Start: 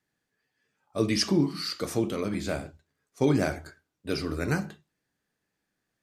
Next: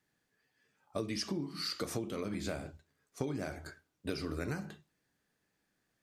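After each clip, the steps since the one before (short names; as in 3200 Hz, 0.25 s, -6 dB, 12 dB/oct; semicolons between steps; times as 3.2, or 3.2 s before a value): compressor 16:1, threshold -34 dBFS, peak gain reduction 17 dB; gain +1 dB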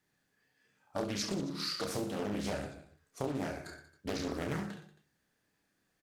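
reverse bouncing-ball echo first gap 30 ms, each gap 1.3×, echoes 5; Doppler distortion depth 0.67 ms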